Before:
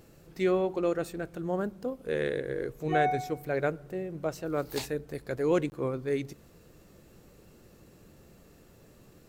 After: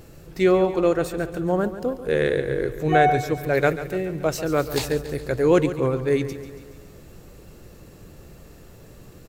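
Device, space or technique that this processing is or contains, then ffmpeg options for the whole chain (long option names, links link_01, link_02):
low shelf boost with a cut just above: -filter_complex "[0:a]lowshelf=frequency=110:gain=6.5,equalizer=frequency=220:width_type=o:width=0.65:gain=-3,aecho=1:1:140|280|420|560|700|840:0.224|0.128|0.0727|0.0415|0.0236|0.0135,asplit=3[link_01][link_02][link_03];[link_01]afade=type=out:start_time=3.53:duration=0.02[link_04];[link_02]adynamicequalizer=threshold=0.00631:dfrequency=1700:dqfactor=0.7:tfrequency=1700:tqfactor=0.7:attack=5:release=100:ratio=0.375:range=3:mode=boostabove:tftype=highshelf,afade=type=in:start_time=3.53:duration=0.02,afade=type=out:start_time=4.67:duration=0.02[link_05];[link_03]afade=type=in:start_time=4.67:duration=0.02[link_06];[link_04][link_05][link_06]amix=inputs=3:normalize=0,volume=8.5dB"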